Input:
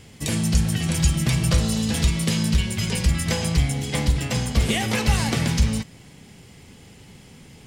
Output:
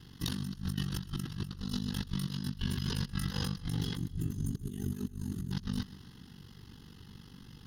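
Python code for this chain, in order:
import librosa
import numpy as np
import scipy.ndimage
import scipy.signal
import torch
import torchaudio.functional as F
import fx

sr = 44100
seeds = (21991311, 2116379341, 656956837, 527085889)

y = x * np.sin(2.0 * np.pi * 24.0 * np.arange(len(x)) / sr)
y = fx.over_compress(y, sr, threshold_db=-29.0, ratio=-0.5)
y = fx.spec_box(y, sr, start_s=3.97, length_s=1.55, low_hz=440.0, high_hz=6200.0, gain_db=-18)
y = fx.fixed_phaser(y, sr, hz=2300.0, stages=6)
y = fx.echo_feedback(y, sr, ms=128, feedback_pct=55, wet_db=-20)
y = F.gain(torch.from_numpy(y), -5.5).numpy()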